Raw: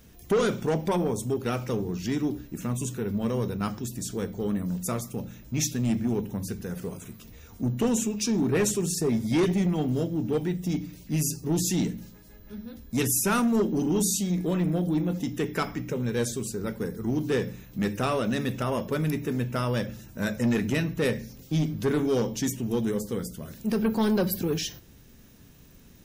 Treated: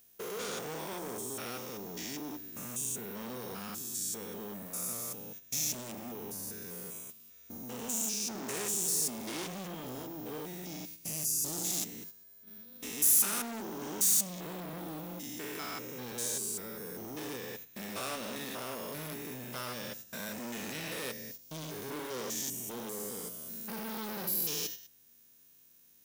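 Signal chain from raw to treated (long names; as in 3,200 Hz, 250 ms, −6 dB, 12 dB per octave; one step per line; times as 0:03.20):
spectrum averaged block by block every 200 ms
gain into a clipping stage and back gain 29 dB
noise gate −42 dBFS, range −10 dB
flanger 0.18 Hz, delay 1.6 ms, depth 3.7 ms, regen −85%
RIAA equalisation recording
convolution reverb, pre-delay 11 ms, DRR 23.5 dB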